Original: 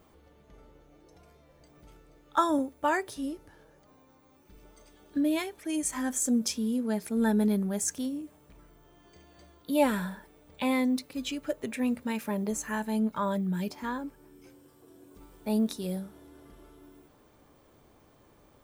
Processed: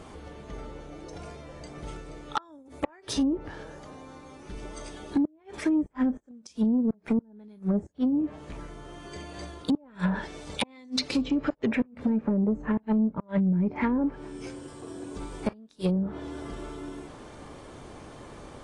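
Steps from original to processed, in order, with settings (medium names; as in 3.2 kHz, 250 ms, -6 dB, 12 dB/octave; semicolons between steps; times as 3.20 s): inverted gate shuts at -20 dBFS, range -38 dB; low-pass that closes with the level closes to 440 Hz, closed at -30 dBFS; 10.15–11.66 s: peaking EQ 5.3 kHz +9.5 dB 1.8 oct; compression 10:1, threshold -35 dBFS, peak gain reduction 11 dB; 13.20–13.89 s: peaking EQ 2.2 kHz +14.5 dB 0.44 oct; sine folder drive 5 dB, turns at -24 dBFS; trim +6 dB; AAC 32 kbps 22.05 kHz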